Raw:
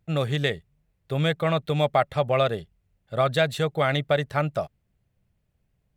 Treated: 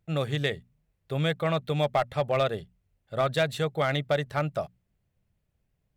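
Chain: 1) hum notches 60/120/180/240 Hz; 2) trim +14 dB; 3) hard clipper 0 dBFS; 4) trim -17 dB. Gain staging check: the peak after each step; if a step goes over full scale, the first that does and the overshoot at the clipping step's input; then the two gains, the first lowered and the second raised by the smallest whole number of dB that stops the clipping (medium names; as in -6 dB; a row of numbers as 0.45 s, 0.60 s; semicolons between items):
-7.5 dBFS, +6.5 dBFS, 0.0 dBFS, -17.0 dBFS; step 2, 6.5 dB; step 2 +7 dB, step 4 -10 dB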